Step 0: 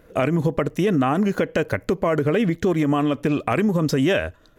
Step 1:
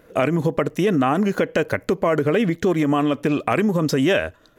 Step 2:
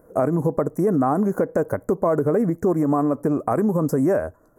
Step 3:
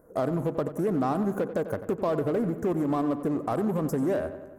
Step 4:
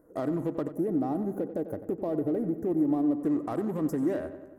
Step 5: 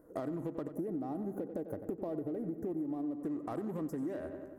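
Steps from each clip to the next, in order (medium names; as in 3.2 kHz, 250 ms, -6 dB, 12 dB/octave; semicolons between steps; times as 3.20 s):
bass shelf 100 Hz -10 dB; trim +2 dB
Chebyshev band-stop 1–9.2 kHz, order 2
in parallel at -11 dB: wavefolder -24.5 dBFS; on the sum: filtered feedback delay 92 ms, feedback 62%, low-pass 4.1 kHz, level -12 dB; trim -7 dB
time-frequency box 0.75–3.23 s, 900–9900 Hz -9 dB; small resonant body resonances 310/1900 Hz, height 10 dB, ringing for 45 ms; trim -6 dB
compression 6:1, threshold -35 dBFS, peak gain reduction 13 dB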